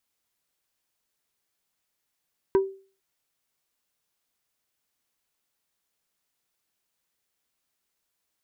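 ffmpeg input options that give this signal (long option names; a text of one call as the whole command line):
ffmpeg -f lavfi -i "aevalsrc='0.2*pow(10,-3*t/0.39)*sin(2*PI*387*t)+0.0668*pow(10,-3*t/0.13)*sin(2*PI*967.5*t)+0.0224*pow(10,-3*t/0.074)*sin(2*PI*1548*t)+0.0075*pow(10,-3*t/0.057)*sin(2*PI*1935*t)+0.00251*pow(10,-3*t/0.041)*sin(2*PI*2515.5*t)':duration=0.45:sample_rate=44100" out.wav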